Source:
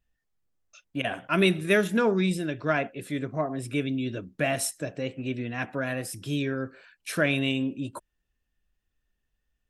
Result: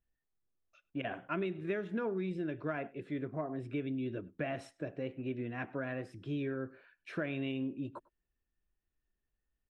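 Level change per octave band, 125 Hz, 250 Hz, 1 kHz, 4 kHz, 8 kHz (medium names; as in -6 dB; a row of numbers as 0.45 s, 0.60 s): -10.0 dB, -9.0 dB, -11.0 dB, -18.5 dB, under -30 dB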